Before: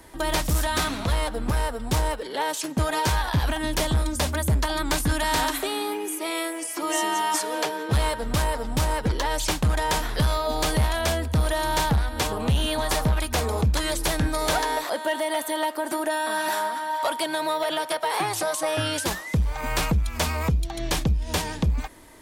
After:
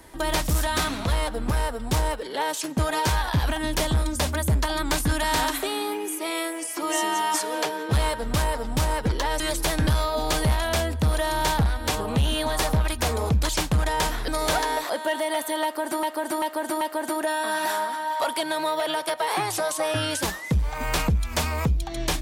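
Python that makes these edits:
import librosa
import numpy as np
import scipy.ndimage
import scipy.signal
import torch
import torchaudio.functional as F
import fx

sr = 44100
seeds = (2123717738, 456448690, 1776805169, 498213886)

y = fx.edit(x, sr, fx.swap(start_s=9.4, length_s=0.79, other_s=13.81, other_length_s=0.47),
    fx.repeat(start_s=15.64, length_s=0.39, count=4), tone=tone)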